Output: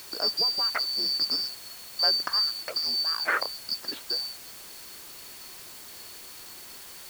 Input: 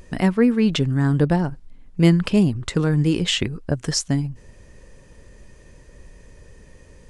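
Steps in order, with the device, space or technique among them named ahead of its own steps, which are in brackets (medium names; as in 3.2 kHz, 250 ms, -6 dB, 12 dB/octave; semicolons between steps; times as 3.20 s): low-pass 3.3 kHz 24 dB/octave; split-band scrambled radio (four frequency bands reordered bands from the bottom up 2341; band-pass 370–2800 Hz; white noise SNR 14 dB)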